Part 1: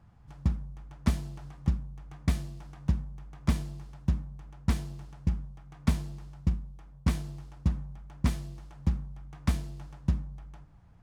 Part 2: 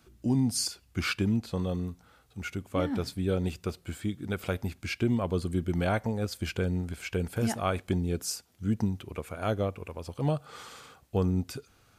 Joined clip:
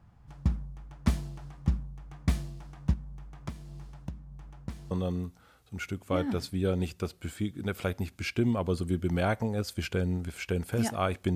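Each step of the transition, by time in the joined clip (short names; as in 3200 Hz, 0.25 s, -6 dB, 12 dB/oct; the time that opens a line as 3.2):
part 1
2.93–4.91 compressor 12:1, threshold -35 dBFS
4.91 switch to part 2 from 1.55 s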